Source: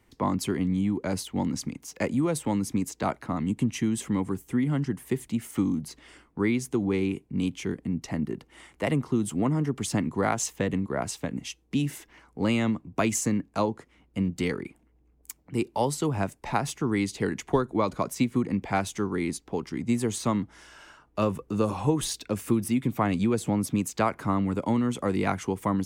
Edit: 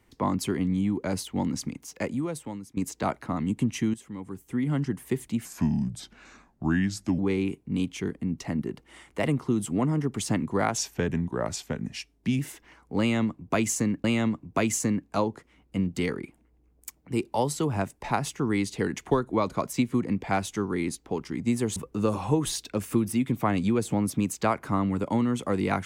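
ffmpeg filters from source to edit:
-filter_complex "[0:a]asplit=9[s0][s1][s2][s3][s4][s5][s6][s7][s8];[s0]atrim=end=2.77,asetpts=PTS-STARTPTS,afade=t=out:st=1.76:d=1.01:silence=0.0944061[s9];[s1]atrim=start=2.77:end=3.94,asetpts=PTS-STARTPTS,afade=t=in:d=0.004:c=hsin:silence=0.0944061,afade=t=out:st=1.166:d=0.004:c=hsin:silence=0.211349[s10];[s2]atrim=start=3.94:end=5.454,asetpts=PTS-STARTPTS,afade=t=in:d=0.78:c=qua:silence=0.211349[s11];[s3]atrim=start=5.45:end=6.82,asetpts=PTS-STARTPTS,asetrate=34839,aresample=44100,atrim=end_sample=76477,asetpts=PTS-STARTPTS[s12];[s4]atrim=start=6.816:end=10.414[s13];[s5]atrim=start=10.41:end=11.85,asetpts=PTS-STARTPTS,asetrate=39249,aresample=44100[s14];[s6]atrim=start=11.846:end=13.502[s15];[s7]atrim=start=12.458:end=20.182[s16];[s8]atrim=start=21.318[s17];[s9][s10][s11]concat=n=3:v=0:a=1[s18];[s18][s12]acrossfade=d=0.004:c1=hsin:c2=hsin[s19];[s19][s13]acrossfade=d=0.004:c1=hsin:c2=hsin[s20];[s20][s14]acrossfade=d=0.004:c1=hsin:c2=hsin[s21];[s21][s15]acrossfade=d=0.004:c1=hsin:c2=hsin[s22];[s22][s16]acrossfade=d=0.004:c1=hsin:c2=hsin[s23];[s23][s17]acrossfade=d=0.004:c1=hsin:c2=hsin"

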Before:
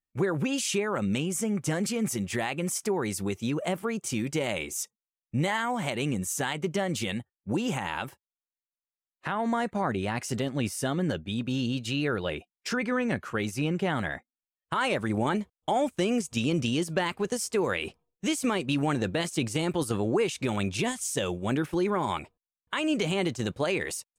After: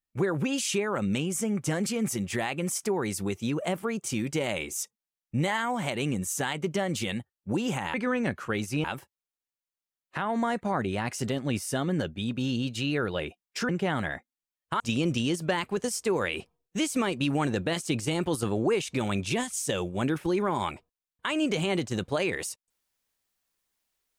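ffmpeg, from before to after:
-filter_complex "[0:a]asplit=5[s0][s1][s2][s3][s4];[s0]atrim=end=7.942[s5];[s1]atrim=start=12.788:end=13.692[s6];[s2]atrim=start=7.938:end=12.792[s7];[s3]atrim=start=13.688:end=14.802[s8];[s4]atrim=start=16.278[s9];[s5][s6]acrossfade=d=0.004:c1=hsin:c2=hsin[s10];[s10][s7]acrossfade=d=0.004:c1=hsin:c2=hsin[s11];[s11][s8]acrossfade=d=0.004:c1=hsin:c2=hsin[s12];[s12][s9]acrossfade=d=0.004:c1=hsin:c2=hsin"

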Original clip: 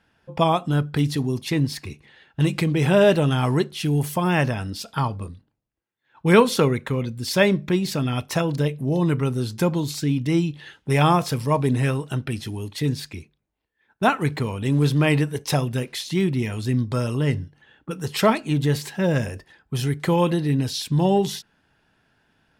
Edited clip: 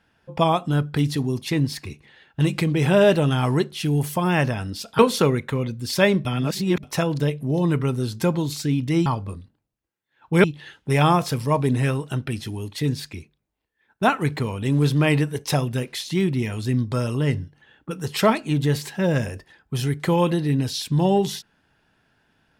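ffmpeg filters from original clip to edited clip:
-filter_complex "[0:a]asplit=6[s0][s1][s2][s3][s4][s5];[s0]atrim=end=4.992[s6];[s1]atrim=start=6.368:end=7.632[s7];[s2]atrim=start=7.628:end=8.212,asetpts=PTS-STARTPTS,areverse[s8];[s3]atrim=start=8.208:end=10.442[s9];[s4]atrim=start=4.988:end=6.372[s10];[s5]atrim=start=10.438[s11];[s6][s7]acrossfade=d=0.004:c1=hsin:c2=hsin[s12];[s12][s8]acrossfade=d=0.004:c1=hsin:c2=hsin[s13];[s13][s9]acrossfade=d=0.004:c1=hsin:c2=hsin[s14];[s14][s10]acrossfade=d=0.004:c1=hsin:c2=hsin[s15];[s15][s11]acrossfade=d=0.004:c1=hsin:c2=hsin"

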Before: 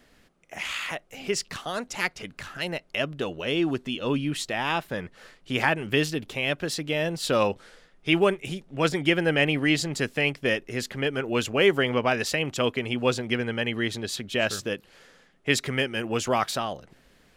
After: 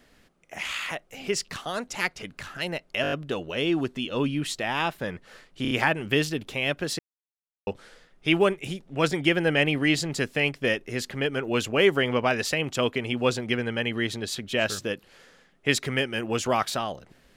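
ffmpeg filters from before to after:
-filter_complex "[0:a]asplit=11[s0][s1][s2][s3][s4][s5][s6][s7][s8][s9][s10];[s0]atrim=end=3.042[s11];[s1]atrim=start=3.018:end=3.042[s12];[s2]atrim=start=3.018:end=3.042[s13];[s3]atrim=start=3.018:end=3.042[s14];[s4]atrim=start=3.018:end=3.042[s15];[s5]atrim=start=3.018:end=5.552[s16];[s6]atrim=start=5.518:end=5.552[s17];[s7]atrim=start=5.518:end=5.552[s18];[s8]atrim=start=5.518:end=6.8,asetpts=PTS-STARTPTS,afade=t=out:st=1.278:d=0.004:c=hsin[s19];[s9]atrim=start=6.8:end=7.48,asetpts=PTS-STARTPTS,volume=0[s20];[s10]atrim=start=7.48,asetpts=PTS-STARTPTS,afade=t=in:d=0.004:c=hsin[s21];[s11][s12]acrossfade=d=0.004:c1=hsin:c2=hsin[s22];[s22][s13]acrossfade=d=0.004:c1=hsin:c2=hsin[s23];[s23][s14]acrossfade=d=0.004:c1=hsin:c2=hsin[s24];[s24][s15]acrossfade=d=0.004:c1=hsin:c2=hsin[s25];[s25][s16]acrossfade=d=0.004:c1=hsin:c2=hsin[s26];[s26][s17]acrossfade=d=0.004:c1=hsin:c2=hsin[s27];[s27][s18]acrossfade=d=0.004:c1=hsin:c2=hsin[s28];[s19][s20][s21]concat=n=3:v=0:a=1[s29];[s28][s29]acrossfade=d=0.004:c1=hsin:c2=hsin"

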